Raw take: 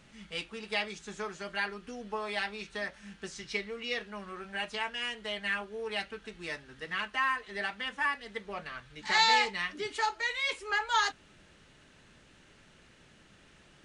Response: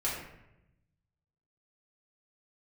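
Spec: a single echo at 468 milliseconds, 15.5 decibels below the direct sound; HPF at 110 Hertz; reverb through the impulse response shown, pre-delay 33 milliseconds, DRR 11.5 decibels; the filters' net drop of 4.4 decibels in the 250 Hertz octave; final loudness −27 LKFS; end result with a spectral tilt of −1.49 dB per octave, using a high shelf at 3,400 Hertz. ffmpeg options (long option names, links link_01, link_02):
-filter_complex "[0:a]highpass=110,equalizer=frequency=250:width_type=o:gain=-5.5,highshelf=frequency=3400:gain=-4.5,aecho=1:1:468:0.168,asplit=2[link_01][link_02];[1:a]atrim=start_sample=2205,adelay=33[link_03];[link_02][link_03]afir=irnorm=-1:irlink=0,volume=-18dB[link_04];[link_01][link_04]amix=inputs=2:normalize=0,volume=7dB"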